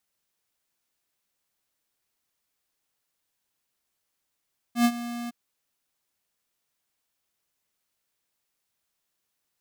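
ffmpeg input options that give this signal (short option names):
-f lavfi -i "aevalsrc='0.126*(2*lt(mod(238*t,1),0.5)-1)':d=0.561:s=44100,afade=t=in:d=0.098,afade=t=out:st=0.098:d=0.061:silence=0.168,afade=t=out:st=0.54:d=0.021"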